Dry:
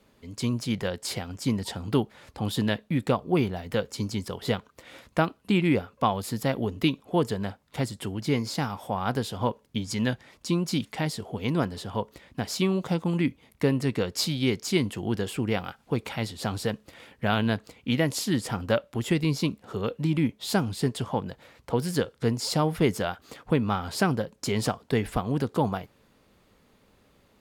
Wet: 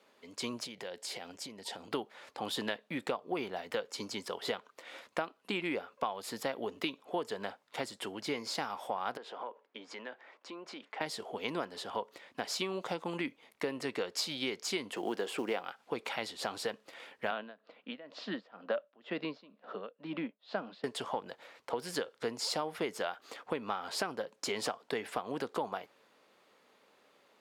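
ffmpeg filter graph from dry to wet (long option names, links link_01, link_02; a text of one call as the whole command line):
ffmpeg -i in.wav -filter_complex "[0:a]asettb=1/sr,asplit=3[link_01][link_02][link_03];[link_01]atrim=end=0.644[link_04];[link_02]atrim=start=0.64:end=1.91,asetpts=PTS-STARTPTS,afade=type=in:duration=0.004:curve=qsin,afade=type=out:start_time=1.266:duration=0.004:curve=qsin,equalizer=frequency=1200:width=1.6:gain=-6,acompressor=threshold=-33dB:ratio=12:attack=3.2:release=140:knee=1:detection=peak[link_05];[link_03]atrim=start=1.906[link_06];[link_04][link_05]acrossfade=duration=0.004:curve1=hsin:curve2=qsin[link_07];[link_07][link_06]acrossfade=duration=0.004:curve1=qsin:curve2=hsin,asettb=1/sr,asplit=3[link_08][link_09][link_10];[link_08]atrim=end=9.174[link_11];[link_09]atrim=start=9.17:end=11.01,asetpts=PTS-STARTPTS,afade=type=in:duration=0.004:curve=qsin,afade=type=out:start_time=1.836:duration=0.004:curve=qsin,lowpass=7000,acrossover=split=270 2500:gain=0.0708 1 0.2[link_12][link_13][link_14];[link_12][link_13][link_14]amix=inputs=3:normalize=0,acompressor=threshold=-37dB:ratio=4:attack=3.2:release=140:knee=1:detection=peak[link_15];[link_10]atrim=start=11.006[link_16];[link_11][link_15]acrossfade=duration=0.004:curve1=hsin:curve2=qsin[link_17];[link_17][link_16]acrossfade=duration=0.004:curve1=qsin:curve2=hsin,asettb=1/sr,asplit=3[link_18][link_19][link_20];[link_18]atrim=end=14.934[link_21];[link_19]atrim=start=14.93:end=15.64,asetpts=PTS-STARTPTS,afade=type=in:duration=0.004:curve=qsin,afade=type=out:start_time=0.706:duration=0.004:curve=qsin,highpass=160,equalizer=frequency=460:width=0.38:gain=5,acrusher=bits=8:mode=log:mix=0:aa=0.000001[link_22];[link_20]atrim=start=15.636[link_23];[link_21][link_22]acrossfade=duration=0.004:curve1=hsin:curve2=qsin[link_24];[link_24][link_23]acrossfade=duration=0.004:curve1=qsin:curve2=hsin,asettb=1/sr,asplit=3[link_25][link_26][link_27];[link_25]atrim=end=17.314[link_28];[link_26]atrim=start=17.31:end=20.84,asetpts=PTS-STARTPTS,afade=type=in:duration=0.004:curve=qsin,afade=type=out:start_time=3.526:duration=0.004:curve=qsin,tremolo=f=2.1:d=0.94,highpass=frequency=180:width=0.5412,highpass=frequency=180:width=1.3066,equalizer=frequency=190:width_type=q:width=4:gain=4,equalizer=frequency=380:width_type=q:width=4:gain=-6,equalizer=frequency=610:width_type=q:width=4:gain=5,equalizer=frequency=870:width_type=q:width=4:gain=-5,equalizer=frequency=2200:width_type=q:width=4:gain=-7,equalizer=frequency=3200:width_type=q:width=4:gain=-4,lowpass=frequency=3500:width=0.5412,lowpass=frequency=3500:width=1.3066[link_29];[link_27]atrim=start=20.836[link_30];[link_28][link_29]acrossfade=duration=0.004:curve1=hsin:curve2=qsin[link_31];[link_31][link_30]acrossfade=duration=0.004:curve1=qsin:curve2=hsin,highpass=460,highshelf=frequency=8500:gain=-10.5,acompressor=threshold=-31dB:ratio=6" out.wav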